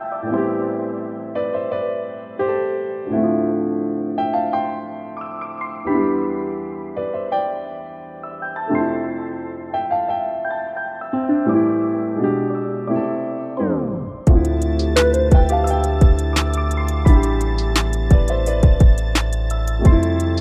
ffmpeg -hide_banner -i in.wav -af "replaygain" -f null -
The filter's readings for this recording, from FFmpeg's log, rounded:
track_gain = +1.6 dB
track_peak = 0.480